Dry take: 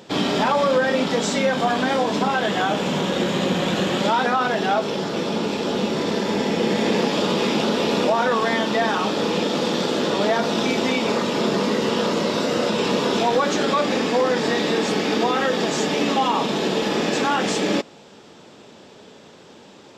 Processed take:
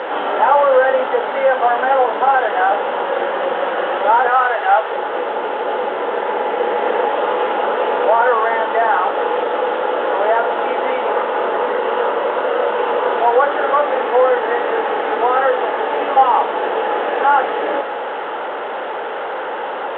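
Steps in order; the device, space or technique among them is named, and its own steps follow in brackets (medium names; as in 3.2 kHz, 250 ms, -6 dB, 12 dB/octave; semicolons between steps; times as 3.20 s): digital answering machine (band-pass 390–3300 Hz; one-bit delta coder 16 kbps, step -23.5 dBFS; cabinet simulation 400–3600 Hz, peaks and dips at 510 Hz +6 dB, 830 Hz +8 dB, 1.4 kHz +5 dB, 2.4 kHz -10 dB); 4.29–4.92 s: frequency weighting A; trim +3.5 dB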